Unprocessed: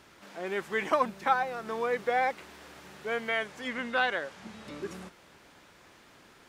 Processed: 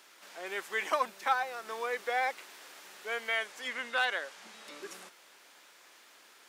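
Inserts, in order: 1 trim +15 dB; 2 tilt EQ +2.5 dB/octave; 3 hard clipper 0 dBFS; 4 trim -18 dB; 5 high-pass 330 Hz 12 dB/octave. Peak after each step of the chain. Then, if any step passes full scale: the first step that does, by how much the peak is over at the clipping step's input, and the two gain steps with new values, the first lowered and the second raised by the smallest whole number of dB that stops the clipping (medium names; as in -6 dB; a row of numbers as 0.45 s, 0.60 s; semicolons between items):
+2.0 dBFS, +3.0 dBFS, 0.0 dBFS, -18.0 dBFS, -16.5 dBFS; step 1, 3.0 dB; step 1 +12 dB, step 4 -15 dB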